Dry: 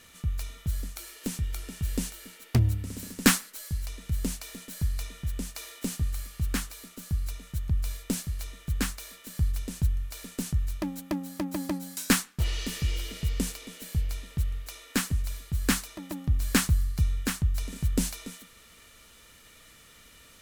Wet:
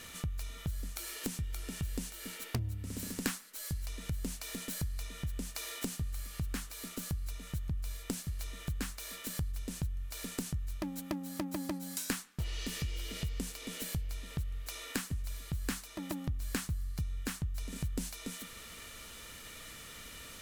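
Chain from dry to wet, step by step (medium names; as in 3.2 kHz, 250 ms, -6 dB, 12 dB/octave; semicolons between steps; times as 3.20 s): compression 4:1, threshold -42 dBFS, peak gain reduction 22.5 dB; trim +5.5 dB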